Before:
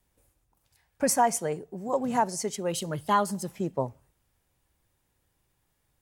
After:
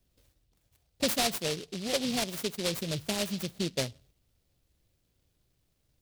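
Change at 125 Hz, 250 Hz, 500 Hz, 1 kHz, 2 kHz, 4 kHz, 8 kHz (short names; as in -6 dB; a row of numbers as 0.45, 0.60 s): -1.0, -2.0, -4.5, -13.0, +0.5, +9.0, -3.0 dB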